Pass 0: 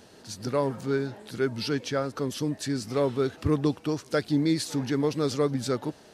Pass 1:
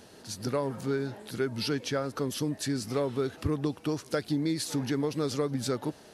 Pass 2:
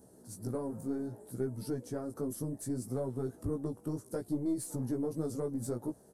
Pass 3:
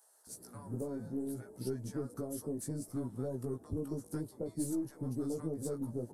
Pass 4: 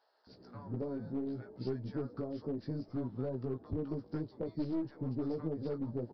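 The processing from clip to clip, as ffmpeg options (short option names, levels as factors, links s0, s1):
-af "equalizer=f=11000:w=3:g=6.5,acompressor=threshold=0.0562:ratio=6"
-af "firequalizer=gain_entry='entry(290,0);entry(2600,-27);entry(8400,2)':delay=0.05:min_phase=1,aeval=exprs='(tanh(8.91*val(0)+0.4)-tanh(0.4))/8.91':c=same,flanger=delay=15.5:depth=3.1:speed=0.65"
-filter_complex "[0:a]asplit=2[s0][s1];[s1]acompressor=threshold=0.00891:ratio=6,volume=0.891[s2];[s0][s2]amix=inputs=2:normalize=0,acrossover=split=830[s3][s4];[s3]adelay=270[s5];[s5][s4]amix=inputs=2:normalize=0,volume=0.596"
-af "aeval=exprs='clip(val(0),-1,0.0168)':c=same,aresample=11025,aresample=44100,volume=1.12"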